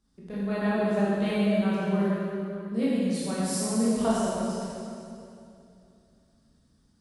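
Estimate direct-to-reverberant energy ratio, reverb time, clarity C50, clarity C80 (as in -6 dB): -9.5 dB, 2.7 s, -4.0 dB, -2.0 dB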